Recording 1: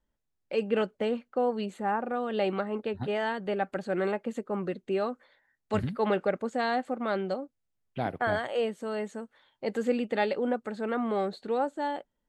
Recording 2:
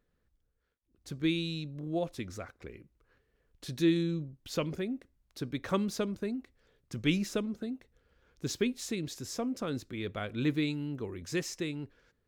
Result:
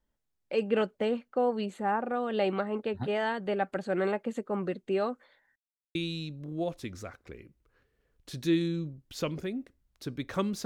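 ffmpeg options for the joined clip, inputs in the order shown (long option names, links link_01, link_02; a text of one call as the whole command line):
ffmpeg -i cue0.wav -i cue1.wav -filter_complex "[0:a]apad=whole_dur=10.65,atrim=end=10.65,asplit=2[link_01][link_02];[link_01]atrim=end=5.56,asetpts=PTS-STARTPTS,afade=type=out:start_time=5.556:duration=0.004:curve=hsin[link_03];[link_02]atrim=start=5.56:end=5.95,asetpts=PTS-STARTPTS,volume=0[link_04];[1:a]atrim=start=1.3:end=6,asetpts=PTS-STARTPTS,afade=type=in:duration=0.004:curve=hsin[link_05];[link_03][link_04][link_05]concat=n=3:v=0:a=1" out.wav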